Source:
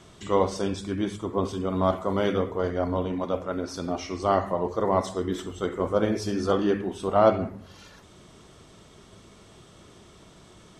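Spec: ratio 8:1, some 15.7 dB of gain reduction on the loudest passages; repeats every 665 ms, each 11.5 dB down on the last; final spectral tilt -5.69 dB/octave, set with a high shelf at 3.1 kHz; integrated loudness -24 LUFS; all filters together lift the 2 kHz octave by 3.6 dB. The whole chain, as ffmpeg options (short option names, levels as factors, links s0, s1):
-af "equalizer=f=2000:t=o:g=7.5,highshelf=f=3100:g=-8.5,acompressor=threshold=0.0316:ratio=8,aecho=1:1:665|1330|1995:0.266|0.0718|0.0194,volume=3.76"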